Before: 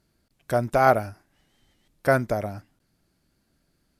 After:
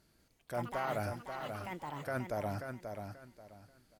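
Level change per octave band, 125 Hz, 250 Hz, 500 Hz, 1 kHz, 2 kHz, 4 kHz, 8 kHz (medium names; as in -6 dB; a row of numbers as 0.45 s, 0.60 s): -11.0 dB, -11.0 dB, -14.5 dB, -14.0 dB, -14.0 dB, -6.5 dB, -10.0 dB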